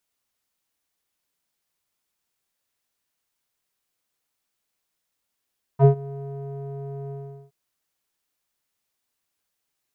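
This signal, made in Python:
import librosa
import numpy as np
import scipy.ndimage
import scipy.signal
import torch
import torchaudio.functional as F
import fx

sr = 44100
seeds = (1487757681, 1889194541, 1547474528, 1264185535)

y = fx.sub_voice(sr, note=49, wave='square', cutoff_hz=540.0, q=2.9, env_oct=1.0, env_s=0.05, attack_ms=57.0, decay_s=0.1, sustain_db=-23, release_s=0.4, note_s=1.32, slope=12)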